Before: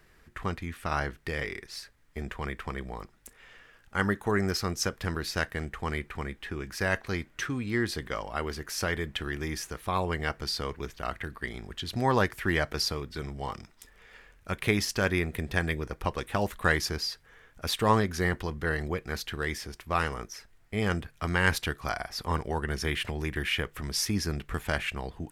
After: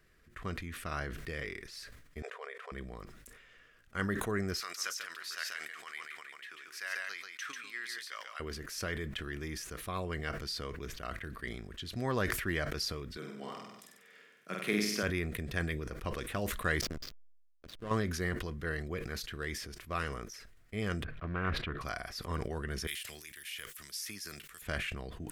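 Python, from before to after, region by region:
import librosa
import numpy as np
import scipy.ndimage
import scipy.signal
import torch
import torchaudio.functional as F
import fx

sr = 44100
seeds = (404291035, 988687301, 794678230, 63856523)

y = fx.chain(x, sr, fx.brickwall_bandpass(low_hz=400.0, high_hz=12000.0),
    fx.tilt_eq(slope=-2.0), at=(2.22, 2.72))
y = fx.chain(y, sr, fx.highpass(hz=1400.0, slope=12),
    fx.echo_single(ms=142, db=-4.5), at=(4.6, 8.4))
y = fx.chain(y, sr, fx.steep_highpass(hz=160.0, slope=36),
    fx.room_flutter(wall_m=8.2, rt60_s=0.81), at=(13.17, 15.03))
y = fx.chain(y, sr, fx.high_shelf(hz=11000.0, db=-8.0),
    fx.comb_fb(f0_hz=510.0, decay_s=0.58, harmonics='all', damping=0.0, mix_pct=60),
    fx.backlash(play_db=-30.5), at=(16.81, 17.91))
y = fx.chain(y, sr, fx.air_absorb(metres=460.0),
    fx.doppler_dist(depth_ms=0.43), at=(21.04, 21.81))
y = fx.chain(y, sr, fx.pre_emphasis(coefficient=0.97),
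    fx.band_squash(depth_pct=70), at=(22.87, 24.62))
y = fx.peak_eq(y, sr, hz=860.0, db=-14.5, octaves=0.24)
y = fx.sustainer(y, sr, db_per_s=44.0)
y = F.gain(torch.from_numpy(y), -7.0).numpy()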